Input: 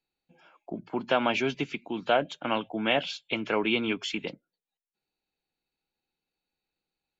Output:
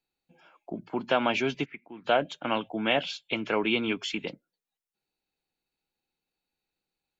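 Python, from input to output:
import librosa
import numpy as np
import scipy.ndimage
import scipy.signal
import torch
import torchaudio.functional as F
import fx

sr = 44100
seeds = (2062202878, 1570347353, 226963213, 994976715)

y = fx.ladder_lowpass(x, sr, hz=2100.0, resonance_pct=70, at=(1.64, 2.04), fade=0.02)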